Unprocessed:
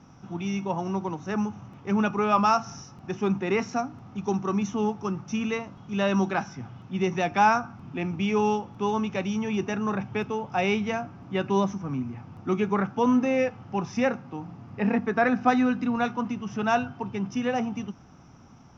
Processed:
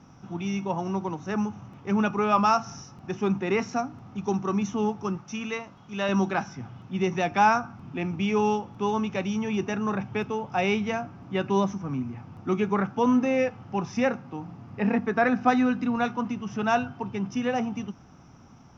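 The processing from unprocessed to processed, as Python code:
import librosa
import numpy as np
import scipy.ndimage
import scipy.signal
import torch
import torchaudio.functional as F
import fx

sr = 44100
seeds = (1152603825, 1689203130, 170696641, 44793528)

y = fx.low_shelf(x, sr, hz=440.0, db=-7.5, at=(5.17, 6.09))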